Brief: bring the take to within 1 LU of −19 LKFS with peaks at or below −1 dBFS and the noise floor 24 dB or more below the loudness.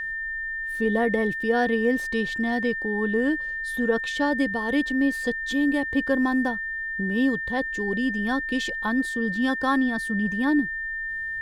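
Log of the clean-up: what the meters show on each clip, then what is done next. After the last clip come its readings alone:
interfering tone 1,800 Hz; level of the tone −28 dBFS; integrated loudness −24.5 LKFS; sample peak −10.5 dBFS; target loudness −19.0 LKFS
→ notch filter 1,800 Hz, Q 30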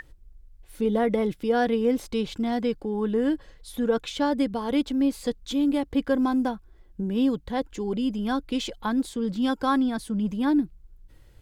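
interfering tone none found; integrated loudness −26.0 LKFS; sample peak −11.0 dBFS; target loudness −19.0 LKFS
→ level +7 dB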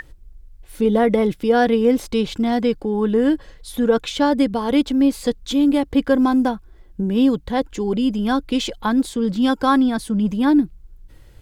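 integrated loudness −19.0 LKFS; sample peak −4.0 dBFS; background noise floor −46 dBFS

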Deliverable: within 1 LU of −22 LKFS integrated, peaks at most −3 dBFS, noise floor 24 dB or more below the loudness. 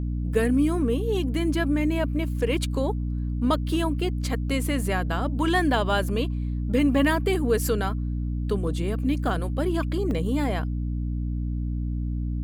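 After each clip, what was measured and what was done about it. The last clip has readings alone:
number of dropouts 1; longest dropout 1.5 ms; mains hum 60 Hz; hum harmonics up to 300 Hz; level of the hum −25 dBFS; integrated loudness −25.5 LKFS; sample peak −10.0 dBFS; target loudness −22.0 LKFS
→ repair the gap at 0:10.11, 1.5 ms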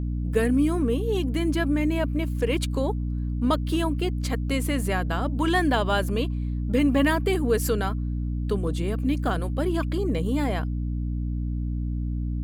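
number of dropouts 0; mains hum 60 Hz; hum harmonics up to 300 Hz; level of the hum −25 dBFS
→ hum removal 60 Hz, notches 5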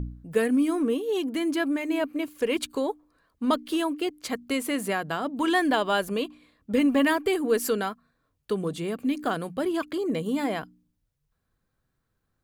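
mains hum none found; integrated loudness −27.0 LKFS; sample peak −11.0 dBFS; target loudness −22.0 LKFS
→ level +5 dB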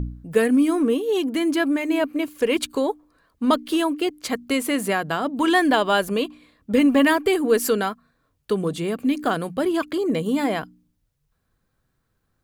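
integrated loudness −22.0 LKFS; sample peak −6.0 dBFS; background noise floor −72 dBFS

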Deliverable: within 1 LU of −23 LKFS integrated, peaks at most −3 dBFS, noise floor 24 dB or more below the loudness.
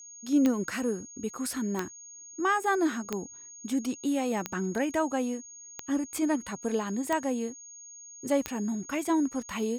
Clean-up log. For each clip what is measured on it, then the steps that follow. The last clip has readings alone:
number of clicks 7; interfering tone 6,600 Hz; level of the tone −45 dBFS; integrated loudness −30.0 LKFS; sample peak −13.0 dBFS; target loudness −23.0 LKFS
→ click removal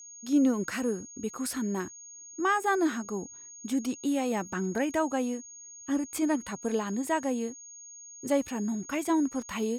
number of clicks 0; interfering tone 6,600 Hz; level of the tone −45 dBFS
→ notch filter 6,600 Hz, Q 30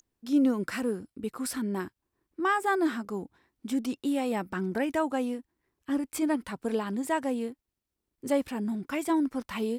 interfering tone none found; integrated loudness −30.5 LKFS; sample peak −15.5 dBFS; target loudness −23.0 LKFS
→ level +7.5 dB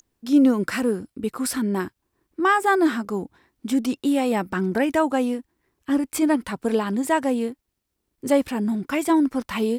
integrated loudness −23.0 LKFS; sample peak −8.0 dBFS; background noise floor −78 dBFS

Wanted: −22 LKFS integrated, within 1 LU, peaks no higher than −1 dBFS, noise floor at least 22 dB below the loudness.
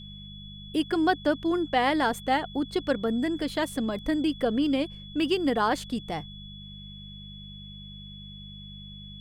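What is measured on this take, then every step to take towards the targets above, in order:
mains hum 50 Hz; hum harmonics up to 200 Hz; level of the hum −43 dBFS; interfering tone 3,400 Hz; level of the tone −45 dBFS; integrated loudness −27.0 LKFS; sample peak −9.5 dBFS; target loudness −22.0 LKFS
→ hum removal 50 Hz, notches 4
notch filter 3,400 Hz, Q 30
level +5 dB

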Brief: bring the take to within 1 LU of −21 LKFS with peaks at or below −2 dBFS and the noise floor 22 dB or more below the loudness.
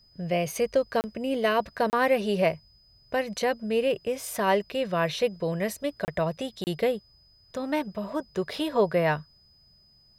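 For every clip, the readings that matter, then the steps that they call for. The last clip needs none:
number of dropouts 4; longest dropout 29 ms; interfering tone 5,000 Hz; level of the tone −58 dBFS; integrated loudness −27.5 LKFS; sample peak −10.5 dBFS; target loudness −21.0 LKFS
→ repair the gap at 0:01.01/0:01.90/0:06.05/0:06.64, 29 ms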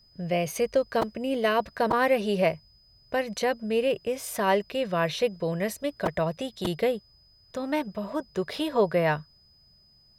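number of dropouts 0; interfering tone 5,000 Hz; level of the tone −58 dBFS
→ notch filter 5,000 Hz, Q 30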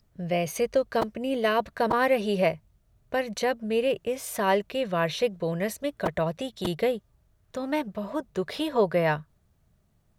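interfering tone none found; integrated loudness −27.5 LKFS; sample peak −10.5 dBFS; target loudness −21.0 LKFS
→ level +6.5 dB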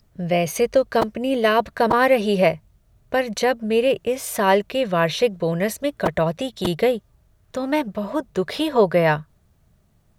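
integrated loudness −21.0 LKFS; sample peak −4.0 dBFS; background noise floor −60 dBFS

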